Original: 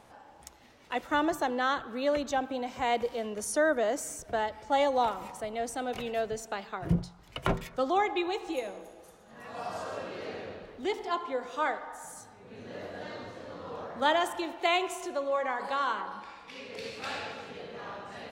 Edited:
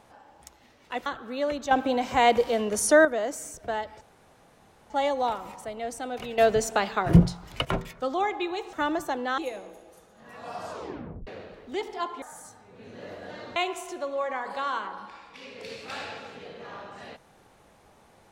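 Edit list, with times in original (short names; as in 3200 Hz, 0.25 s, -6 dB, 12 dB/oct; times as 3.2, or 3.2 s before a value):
1.06–1.71 move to 8.49
2.36–3.7 gain +8.5 dB
4.66 insert room tone 0.89 s
6.14–7.41 gain +11 dB
9.82 tape stop 0.56 s
11.33–11.94 cut
13.28–14.7 cut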